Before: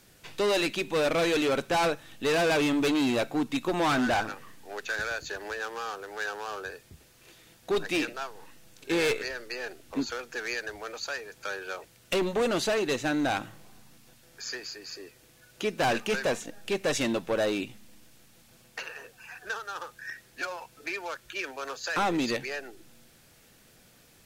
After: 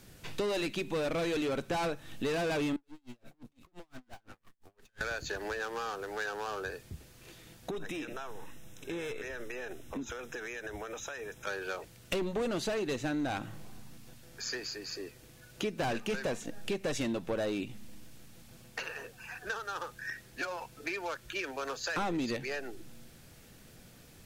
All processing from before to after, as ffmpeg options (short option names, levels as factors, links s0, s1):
-filter_complex "[0:a]asettb=1/sr,asplit=3[s0][s1][s2];[s0]atrim=end=2.764[s3];[s1]atrim=start=2.76:end=5.01,asetpts=PTS-STARTPTS,afade=t=in:d=0.004:c=qsin,afade=t=out:st=2.246:d=0.004:c=qsin,acompressor=threshold=0.01:ratio=2.5:attack=3.2:release=140:knee=1:detection=peak,aeval=exprs='(tanh(224*val(0)+0.7)-tanh(0.7))/224':c=same,aeval=exprs='val(0)*pow(10,-35*(0.5-0.5*cos(2*PI*5.8*n/s))/20)':c=same[s4];[s2]atrim=start=5.006[s5];[s3][s4]acrossfade=d=0.004:c1=hsin:c2=qsin[s6];[s6][s5]acrossfade=d=0.004:c1=qsin:c2=hsin,asettb=1/sr,asplit=3[s7][s8][s9];[s7]atrim=end=7.704[s10];[s8]atrim=start=7.7:end=11.47,asetpts=PTS-STARTPTS,afade=t=in:d=0.004:c=qsin,afade=t=out:st=3.766:d=0.004:c=qsin,asuperstop=centerf=4500:order=20:qfactor=4.8,acompressor=threshold=0.0141:ratio=12:attack=3.2:release=140:knee=1:detection=peak[s11];[s9]atrim=start=11.466[s12];[s10][s11]acrossfade=d=0.004:c1=hsin:c2=qsin[s13];[s13][s12]acrossfade=d=0.004:c1=qsin:c2=hsin,lowshelf=f=300:g=8,acompressor=threshold=0.0224:ratio=3"